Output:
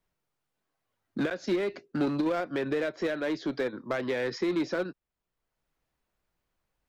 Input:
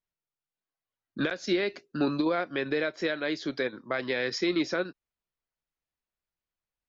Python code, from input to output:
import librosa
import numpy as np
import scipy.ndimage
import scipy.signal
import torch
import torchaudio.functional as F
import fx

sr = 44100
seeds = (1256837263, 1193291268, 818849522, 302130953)

p1 = fx.high_shelf(x, sr, hz=2000.0, db=-10.0)
p2 = 10.0 ** (-31.5 / 20.0) * (np.abs((p1 / 10.0 ** (-31.5 / 20.0) + 3.0) % 4.0 - 2.0) - 1.0)
p3 = p1 + F.gain(torch.from_numpy(p2), -8.0).numpy()
y = fx.band_squash(p3, sr, depth_pct=40)